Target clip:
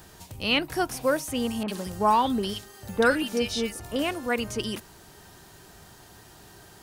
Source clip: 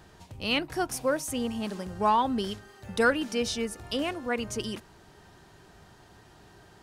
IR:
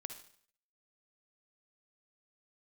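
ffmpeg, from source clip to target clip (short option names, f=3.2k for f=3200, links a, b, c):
-filter_complex "[0:a]acrossover=split=4200[a][b];[b]acompressor=threshold=-51dB:ratio=4:attack=1:release=60[c];[a][c]amix=inputs=2:normalize=0,aemphasis=mode=production:type=50fm,asettb=1/sr,asplit=3[d][e][f];[d]atrim=end=1.634[g];[e]atrim=start=1.63:end=3.96,asetpts=PTS-STARTPTS,afade=t=in:d=0.004:c=qsin,afade=t=out:st=2.326:d=0.004:c=qsin,acrossover=split=1800[h][i];[i]adelay=50[j];[h][j]amix=inputs=2:normalize=0,atrim=end_sample=102753[k];[f]atrim=start=3.956[l];[g][k]acrossfade=d=0.004:c1=hsin:c2=qsin[m];[m][l]acrossfade=d=0.004:c1=qsin:c2=hsin,volume=3dB"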